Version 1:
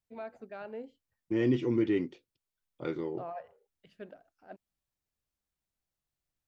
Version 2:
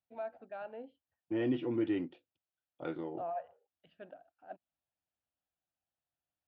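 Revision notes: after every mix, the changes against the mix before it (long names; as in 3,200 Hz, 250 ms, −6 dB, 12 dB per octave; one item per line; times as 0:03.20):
master: add loudspeaker in its box 110–3,200 Hz, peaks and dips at 130 Hz −8 dB, 210 Hz −10 dB, 410 Hz −10 dB, 720 Hz +5 dB, 1,100 Hz −5 dB, 2,100 Hz −9 dB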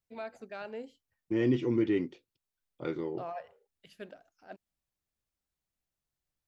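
first voice: remove low-pass filter 1,400 Hz 6 dB per octave
master: remove loudspeaker in its box 110–3,200 Hz, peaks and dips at 130 Hz −8 dB, 210 Hz −10 dB, 410 Hz −10 dB, 720 Hz +5 dB, 1,100 Hz −5 dB, 2,100 Hz −9 dB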